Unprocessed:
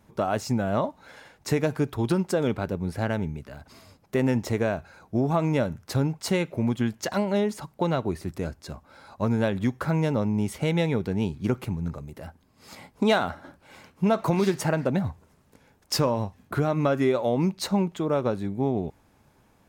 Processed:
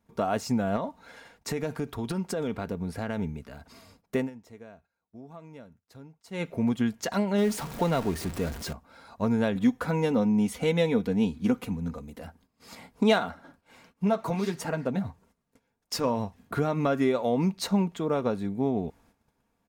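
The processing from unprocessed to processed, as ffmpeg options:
ffmpeg -i in.wav -filter_complex "[0:a]asettb=1/sr,asplit=3[link_01][link_02][link_03];[link_01]atrim=end=0.764[link_04];[link_02]atrim=start=0.76:end=3.19,asetpts=PTS-STARTPTS,afade=type=in:duration=0.004:curve=qsin,afade=type=out:start_time=2.426:duration=0.004:curve=qsin,acompressor=threshold=-24dB:ratio=6:attack=3.2:release=140:knee=1:detection=peak[link_05];[link_03]atrim=start=3.186[link_06];[link_04][link_05]acrossfade=duration=0.004:curve1=hsin:curve2=qsin[link_07];[link_07][link_06]acrossfade=duration=0.004:curve1=qsin:curve2=hsin,asettb=1/sr,asplit=3[link_08][link_09][link_10];[link_08]atrim=end=7.384[link_11];[link_09]atrim=start=7.38:end=8.73,asetpts=PTS-STARTPTS,afade=type=in:duration=0.004:curve=qsin,afade=type=out:start_time=1.346:duration=0.004:curve=qsin,aeval=exprs='val(0)+0.5*0.0266*sgn(val(0))':channel_layout=same[link_12];[link_10]atrim=start=8.726[link_13];[link_11][link_12]acrossfade=duration=0.004:curve1=hsin:curve2=qsin[link_14];[link_14][link_13]acrossfade=duration=0.004:curve1=qsin:curve2=hsin,asettb=1/sr,asplit=3[link_15][link_16][link_17];[link_15]atrim=end=9.554[link_18];[link_16]atrim=start=9.55:end=12.25,asetpts=PTS-STARTPTS,afade=type=in:duration=0.004:curve=qsin,afade=type=out:start_time=2.696:duration=0.004:curve=qsin,aecho=1:1:4:0.56,atrim=end_sample=119070[link_19];[link_17]atrim=start=12.246[link_20];[link_18][link_19]acrossfade=duration=0.004:curve1=hsin:curve2=qsin[link_21];[link_21][link_20]acrossfade=duration=0.004:curve1=qsin:curve2=hsin,asplit=3[link_22][link_23][link_24];[link_22]afade=type=out:start_time=13.18:duration=0.02[link_25];[link_23]flanger=delay=3.3:depth=7:regen=-32:speed=1.5:shape=triangular,afade=type=in:start_time=13.18:duration=0.02,afade=type=out:start_time=16.03:duration=0.02[link_26];[link_24]afade=type=in:start_time=16.03:duration=0.02[link_27];[link_25][link_26][link_27]amix=inputs=3:normalize=0,asplit=3[link_28][link_29][link_30];[link_28]atrim=end=4.3,asetpts=PTS-STARTPTS,afade=type=out:start_time=4.16:duration=0.14:silence=0.0944061[link_31];[link_29]atrim=start=4.3:end=6.31,asetpts=PTS-STARTPTS,volume=-20.5dB[link_32];[link_30]atrim=start=6.31,asetpts=PTS-STARTPTS,afade=type=in:duration=0.14:silence=0.0944061[link_33];[link_31][link_32][link_33]concat=n=3:v=0:a=1,agate=range=-12dB:threshold=-57dB:ratio=16:detection=peak,aecho=1:1:4.3:0.35,volume=-2dB" out.wav

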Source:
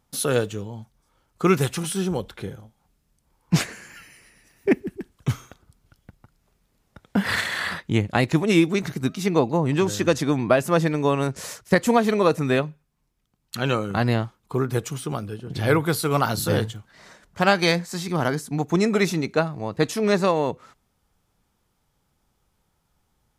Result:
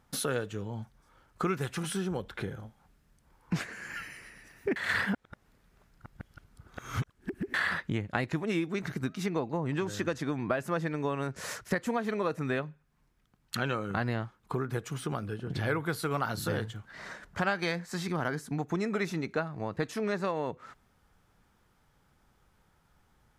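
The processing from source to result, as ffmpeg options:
ffmpeg -i in.wav -filter_complex "[0:a]asplit=3[link_01][link_02][link_03];[link_01]atrim=end=4.762[link_04];[link_02]atrim=start=4.758:end=7.542,asetpts=PTS-STARTPTS,areverse[link_05];[link_03]atrim=start=7.538[link_06];[link_04][link_05]acrossfade=duration=0.004:curve1=hsin:curve2=hsin[link_07];[link_07][link_06]acrossfade=duration=0.004:curve1=hsin:curve2=hsin,highshelf=frequency=4200:gain=-6,acompressor=threshold=-36dB:ratio=3,equalizer=frequency=1600:width_type=o:width=0.82:gain=6,volume=2.5dB" out.wav

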